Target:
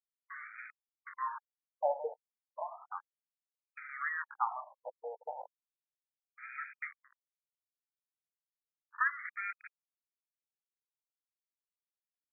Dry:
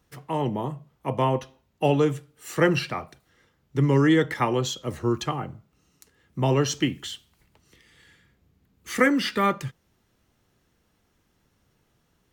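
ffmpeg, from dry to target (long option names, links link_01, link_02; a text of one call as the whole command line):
ffmpeg -i in.wav -af "aeval=exprs='val(0)*gte(abs(val(0)),0.0473)':channel_layout=same,agate=range=-33dB:threshold=-41dB:ratio=3:detection=peak,afftfilt=real='re*between(b*sr/1024,650*pow(1800/650,0.5+0.5*sin(2*PI*0.34*pts/sr))/1.41,650*pow(1800/650,0.5+0.5*sin(2*PI*0.34*pts/sr))*1.41)':imag='im*between(b*sr/1024,650*pow(1800/650,0.5+0.5*sin(2*PI*0.34*pts/sr))/1.41,650*pow(1800/650,0.5+0.5*sin(2*PI*0.34*pts/sr))*1.41)':win_size=1024:overlap=0.75,volume=-6dB" out.wav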